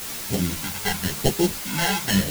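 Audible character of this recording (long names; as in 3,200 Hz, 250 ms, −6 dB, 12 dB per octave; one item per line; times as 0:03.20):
aliases and images of a low sample rate 1,200 Hz, jitter 0%
phaser sweep stages 2, 0.92 Hz, lowest notch 320–1,400 Hz
a quantiser's noise floor 6 bits, dither triangular
a shimmering, thickened sound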